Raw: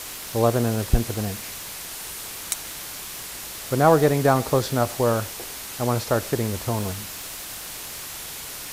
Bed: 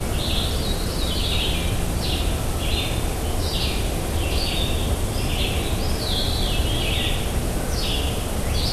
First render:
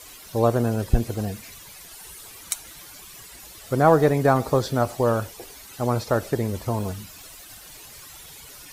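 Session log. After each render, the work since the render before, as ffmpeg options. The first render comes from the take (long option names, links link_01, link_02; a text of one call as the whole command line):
ffmpeg -i in.wav -af "afftdn=noise_reduction=13:noise_floor=-36" out.wav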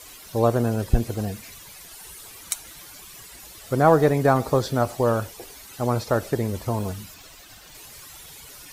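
ffmpeg -i in.wav -filter_complex "[0:a]asettb=1/sr,asplit=3[link_01][link_02][link_03];[link_01]atrim=end=7.144[link_04];[link_02]atrim=start=7.14:end=7.75,asetpts=PTS-STARTPTS,afade=type=in:duration=0.004:curve=qsin,afade=type=out:start_time=0.606:duration=0.004:curve=qsin,equalizer=frequency=11000:width_type=o:width=0.75:gain=-9.5[link_05];[link_03]atrim=start=7.746[link_06];[link_04][link_05]acrossfade=duration=0.004:curve1=hsin:curve2=qsin[link_07];[link_07][link_06]acrossfade=duration=0.004:curve1=qsin:curve2=hsin" out.wav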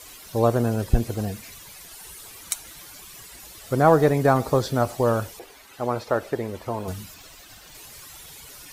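ffmpeg -i in.wav -filter_complex "[0:a]asettb=1/sr,asplit=3[link_01][link_02][link_03];[link_01]atrim=end=5.394[link_04];[link_02]atrim=start=5.39:end=6.88,asetpts=PTS-STARTPTS,afade=type=in:duration=0.004:curve=qsin,afade=type=out:start_time=1.486:duration=0.004:curve=qsin,bass=frequency=250:gain=-9,treble=frequency=4000:gain=-9[link_05];[link_03]atrim=start=6.876[link_06];[link_04][link_05]acrossfade=duration=0.004:curve1=hsin:curve2=qsin[link_07];[link_07][link_06]acrossfade=duration=0.004:curve1=qsin:curve2=hsin" out.wav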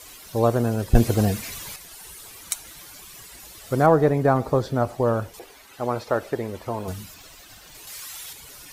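ffmpeg -i in.wav -filter_complex "[0:a]asettb=1/sr,asplit=3[link_01][link_02][link_03];[link_01]atrim=end=3.864[link_04];[link_02]atrim=start=3.86:end=5.34,asetpts=PTS-STARTPTS,afade=type=in:duration=0.004:curve=qsin,afade=type=out:start_time=1.476:duration=0.004:curve=qsin,highshelf=frequency=2600:gain=-10[link_05];[link_03]atrim=start=5.336[link_06];[link_04][link_05]acrossfade=duration=0.004:curve1=hsin:curve2=qsin[link_07];[link_07][link_06]acrossfade=duration=0.004:curve1=qsin:curve2=hsin,asettb=1/sr,asplit=3[link_08][link_09][link_10];[link_08]atrim=end=7.874[link_11];[link_09]atrim=start=7.87:end=8.33,asetpts=PTS-STARTPTS,afade=type=in:duration=0.004:curve=qsin,afade=type=out:start_time=0.456:duration=0.004:curve=qsin,tiltshelf=frequency=680:gain=-6.5[link_12];[link_10]atrim=start=8.326[link_13];[link_11][link_12]acrossfade=duration=0.004:curve1=hsin:curve2=qsin[link_14];[link_14][link_13]acrossfade=duration=0.004:curve1=qsin:curve2=hsin,asplit=3[link_15][link_16][link_17];[link_15]atrim=end=0.952[link_18];[link_16]atrim=start=0.948:end=1.762,asetpts=PTS-STARTPTS,volume=7.5dB[link_19];[link_17]atrim=start=1.758[link_20];[link_18][link_19]acrossfade=duration=0.004:curve1=hsin:curve2=hsin[link_21];[link_21][link_20]acrossfade=duration=0.004:curve1=hsin:curve2=hsin" out.wav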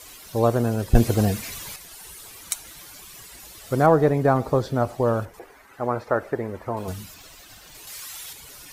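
ffmpeg -i in.wav -filter_complex "[0:a]asettb=1/sr,asplit=3[link_01][link_02][link_03];[link_01]atrim=end=5.254[link_04];[link_02]atrim=start=5.25:end=6.77,asetpts=PTS-STARTPTS,afade=type=in:duration=0.004:curve=qsin,afade=type=out:start_time=1.516:duration=0.004:curve=qsin,highshelf=frequency=2400:width_type=q:width=1.5:gain=-8.5[link_05];[link_03]atrim=start=6.766[link_06];[link_04][link_05]acrossfade=duration=0.004:curve1=hsin:curve2=qsin[link_07];[link_07][link_06]acrossfade=duration=0.004:curve1=qsin:curve2=hsin" out.wav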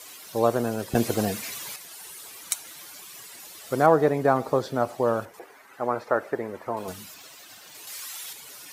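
ffmpeg -i in.wav -af "highpass=140,lowshelf=frequency=250:gain=-7" out.wav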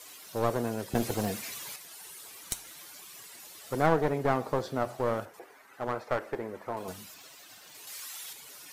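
ffmpeg -i in.wav -af "aeval=exprs='clip(val(0),-1,0.0596)':channel_layout=same,flanger=delay=6.6:depth=5.9:regen=-86:speed=0.53:shape=sinusoidal" out.wav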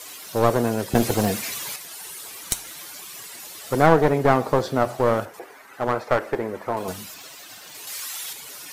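ffmpeg -i in.wav -af "volume=9.5dB,alimiter=limit=-1dB:level=0:latency=1" out.wav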